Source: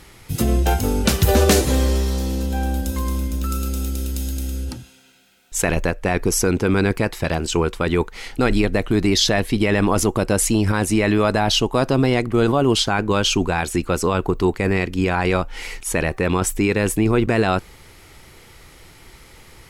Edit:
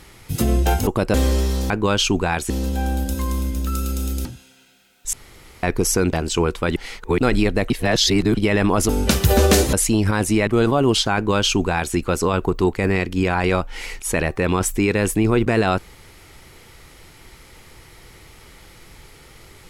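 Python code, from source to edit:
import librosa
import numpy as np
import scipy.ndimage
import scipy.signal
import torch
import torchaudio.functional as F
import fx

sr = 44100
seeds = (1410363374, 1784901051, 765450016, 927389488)

y = fx.edit(x, sr, fx.swap(start_s=0.87, length_s=0.84, other_s=10.07, other_length_s=0.27),
    fx.cut(start_s=4.02, length_s=0.7),
    fx.room_tone_fill(start_s=5.6, length_s=0.5),
    fx.cut(start_s=6.6, length_s=0.71),
    fx.reverse_span(start_s=7.94, length_s=0.42),
    fx.reverse_span(start_s=8.88, length_s=0.67),
    fx.cut(start_s=11.08, length_s=1.2),
    fx.duplicate(start_s=12.96, length_s=0.8, to_s=2.27), tone=tone)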